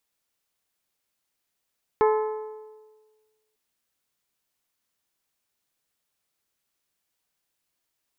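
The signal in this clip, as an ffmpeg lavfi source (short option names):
-f lavfi -i "aevalsrc='0.158*pow(10,-3*t/1.45)*sin(2*PI*432*t)+0.0891*pow(10,-3*t/1.178)*sin(2*PI*864*t)+0.0501*pow(10,-3*t/1.115)*sin(2*PI*1036.8*t)+0.0282*pow(10,-3*t/1.043)*sin(2*PI*1296*t)+0.0158*pow(10,-3*t/0.957)*sin(2*PI*1728*t)+0.00891*pow(10,-3*t/0.895)*sin(2*PI*2160*t)':d=1.55:s=44100"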